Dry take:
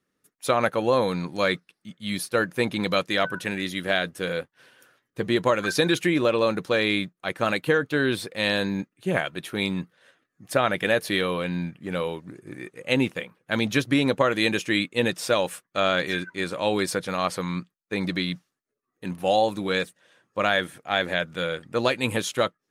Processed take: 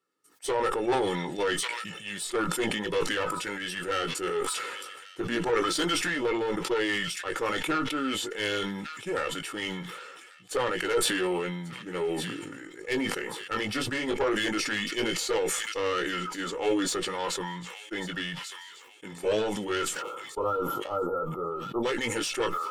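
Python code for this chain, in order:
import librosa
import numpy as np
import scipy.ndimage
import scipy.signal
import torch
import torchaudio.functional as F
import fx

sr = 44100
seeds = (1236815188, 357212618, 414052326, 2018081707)

p1 = scipy.signal.sosfilt(scipy.signal.bessel(2, 310.0, 'highpass', norm='mag', fs=sr, output='sos'), x)
p2 = fx.formant_shift(p1, sr, semitones=-3)
p3 = p2 + 0.49 * np.pad(p2, (int(2.3 * sr / 1000.0), 0))[:len(p2)]
p4 = fx.tube_stage(p3, sr, drive_db=19.0, bias=0.3)
p5 = fx.chorus_voices(p4, sr, voices=2, hz=0.18, base_ms=18, depth_ms=1.5, mix_pct=30)
p6 = fx.spec_erase(p5, sr, start_s=20.02, length_s=1.81, low_hz=1400.0, high_hz=11000.0)
p7 = p6 + fx.echo_wet_highpass(p6, sr, ms=1142, feedback_pct=32, hz=2400.0, wet_db=-18.5, dry=0)
y = fx.sustainer(p7, sr, db_per_s=31.0)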